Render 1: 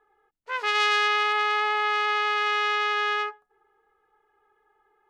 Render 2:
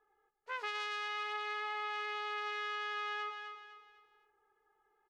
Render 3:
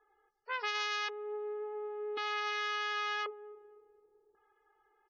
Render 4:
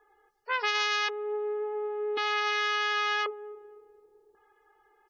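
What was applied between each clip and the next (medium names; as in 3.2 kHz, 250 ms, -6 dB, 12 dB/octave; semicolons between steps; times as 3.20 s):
on a send: feedback delay 253 ms, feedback 38%, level -12 dB; on the sum: compression, threshold -26 dBFS, peak gain reduction 9 dB; trim -8.5 dB
LFO low-pass square 0.46 Hz 430–5900 Hz; loudest bins only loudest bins 64; trim +3 dB
band-stop 1.3 kHz, Q 26; trim +7.5 dB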